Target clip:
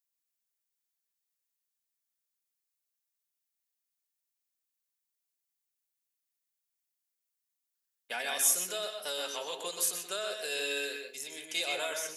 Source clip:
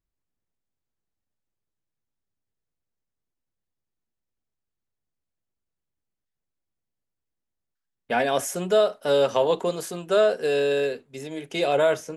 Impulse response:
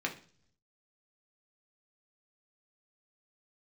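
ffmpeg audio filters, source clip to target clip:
-filter_complex "[0:a]alimiter=limit=0.158:level=0:latency=1:release=146,aderivative,aeval=exprs='0.106*(cos(1*acos(clip(val(0)/0.106,-1,1)))-cos(1*PI/2))+0.00133*(cos(3*acos(clip(val(0)/0.106,-1,1)))-cos(3*PI/2))':c=same,asplit=2[s0][s1];[1:a]atrim=start_sample=2205,adelay=124[s2];[s1][s2]afir=irnorm=-1:irlink=0,volume=0.447[s3];[s0][s3]amix=inputs=2:normalize=0,volume=2.11"

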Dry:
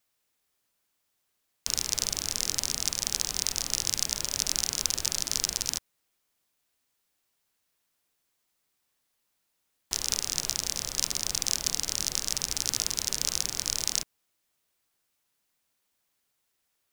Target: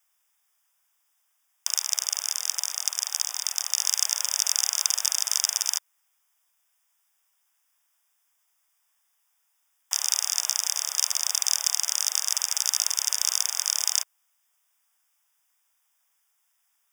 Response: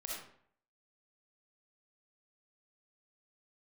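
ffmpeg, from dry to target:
-filter_complex "[0:a]asuperstop=centerf=4200:order=20:qfactor=3.9,equalizer=f=2700:t=o:w=1.4:g=-3.5,acontrast=61,highpass=f=790:w=0.5412,highpass=f=790:w=1.3066,asplit=3[s0][s1][s2];[s0]afade=t=out:st=1.67:d=0.02[s3];[s1]tremolo=f=71:d=0.667,afade=t=in:st=1.67:d=0.02,afade=t=out:st=3.77:d=0.02[s4];[s2]afade=t=in:st=3.77:d=0.02[s5];[s3][s4][s5]amix=inputs=3:normalize=0"

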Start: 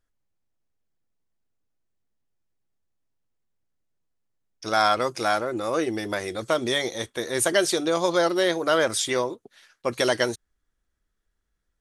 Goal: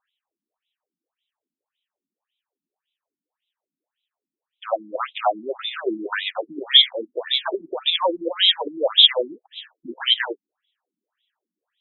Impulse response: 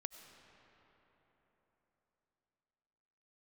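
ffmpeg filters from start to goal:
-filter_complex "[0:a]highpass=100,equalizer=f=940:t=q:w=4:g=3,equalizer=f=1400:t=q:w=4:g=-6,equalizer=f=2100:t=q:w=4:g=-10,equalizer=f=3200:t=q:w=4:g=9,lowpass=f=6600:w=0.5412,lowpass=f=6600:w=1.3066,asplit=2[s0][s1];[s1]alimiter=limit=0.158:level=0:latency=1:release=37,volume=1[s2];[s0][s2]amix=inputs=2:normalize=0,aeval=exprs='0.596*sin(PI/2*1.78*val(0)/0.596)':c=same,aemphasis=mode=production:type=riaa,acrossover=split=270|1800[s3][s4][s5];[s3]acompressor=threshold=0.0112:ratio=6[s6];[s6][s4][s5]amix=inputs=3:normalize=0,afftfilt=real='re*between(b*sr/1024,230*pow(2900/230,0.5+0.5*sin(2*PI*1.8*pts/sr))/1.41,230*pow(2900/230,0.5+0.5*sin(2*PI*1.8*pts/sr))*1.41)':imag='im*between(b*sr/1024,230*pow(2900/230,0.5+0.5*sin(2*PI*1.8*pts/sr))/1.41,230*pow(2900/230,0.5+0.5*sin(2*PI*1.8*pts/sr))*1.41)':win_size=1024:overlap=0.75,volume=0.708"

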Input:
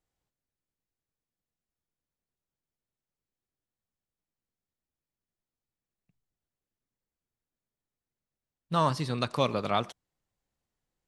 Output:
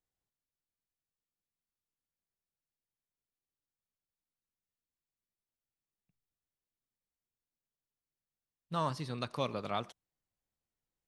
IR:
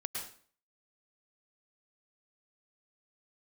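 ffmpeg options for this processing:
-filter_complex "[0:a]asettb=1/sr,asplit=3[s0][s1][s2];[s0]atrim=end=8.984[s3];[s1]atrim=start=8.98:end=9.61,asetpts=PTS-STARTPTS,afade=t=in:d=0.004:c=qsin,afade=t=out:st=0.626:d=0.004:c=qsin,bandreject=f=7500:w=8.8[s4];[s2]atrim=start=9.606[s5];[s3][s4]acrossfade=d=0.004:c1=hsin:c2=qsin[s6];[s6][s5]acrossfade=d=0.004:c1=qsin:c2=hsin,volume=0.398"

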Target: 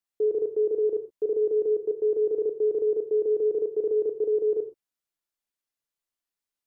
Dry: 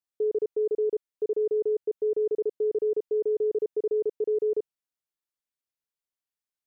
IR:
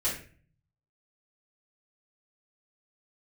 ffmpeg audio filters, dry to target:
-filter_complex "[0:a]asplit=2[s0][s1];[1:a]atrim=start_sample=2205,atrim=end_sample=3969,asetrate=29106,aresample=44100[s2];[s1][s2]afir=irnorm=-1:irlink=0,volume=0.188[s3];[s0][s3]amix=inputs=2:normalize=0"

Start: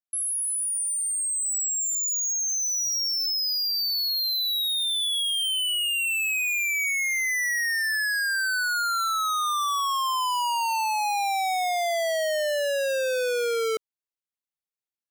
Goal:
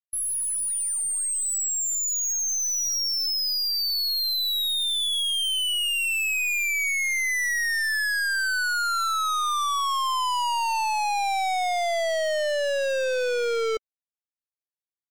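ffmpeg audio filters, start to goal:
-filter_complex "[0:a]afftdn=nr=18:nf=-34,asplit=2[s0][s1];[s1]acrusher=bits=3:dc=4:mix=0:aa=0.000001,volume=0.316[s2];[s0][s2]amix=inputs=2:normalize=0,volume=0.891"

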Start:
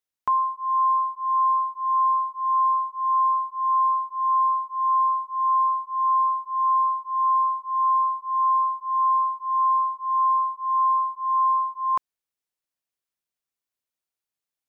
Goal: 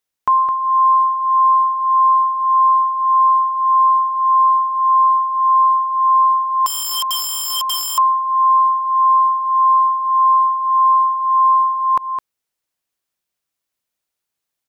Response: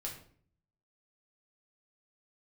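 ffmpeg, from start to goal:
-filter_complex "[0:a]aecho=1:1:212:0.422,asettb=1/sr,asplit=3[s0][s1][s2];[s0]atrim=end=6.664[s3];[s1]atrim=start=6.66:end=7.98,asetpts=PTS-STARTPTS,afade=t=in:d=0.004:c=qsin,afade=t=out:st=1.316:d=0.004:c=qsin,aeval=exprs='(mod(15.8*val(0)+1,2)-1)/15.8':c=same[s4];[s2]atrim=start=7.976[s5];[s3][s4]acrossfade=d=0.004:c1=hsin:c2=qsin[s6];[s6][s5]acrossfade=d=0.004:c1=qsin:c2=hsin,volume=2.37"

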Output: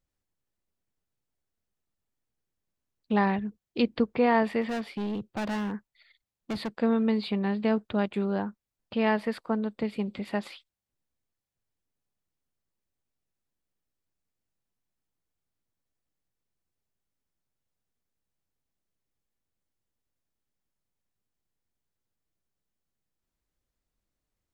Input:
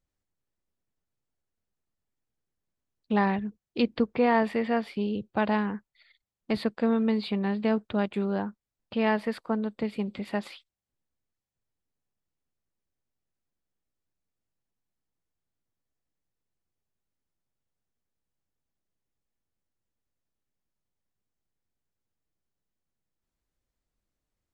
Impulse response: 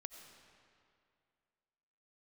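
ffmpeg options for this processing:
-filter_complex "[0:a]asplit=3[s0][s1][s2];[s0]afade=t=out:st=4.61:d=0.02[s3];[s1]asoftclip=type=hard:threshold=0.0398,afade=t=in:st=4.61:d=0.02,afade=t=out:st=6.73:d=0.02[s4];[s2]afade=t=in:st=6.73:d=0.02[s5];[s3][s4][s5]amix=inputs=3:normalize=0"

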